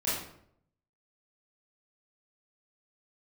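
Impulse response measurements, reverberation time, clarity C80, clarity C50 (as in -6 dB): 0.70 s, 5.5 dB, 0.5 dB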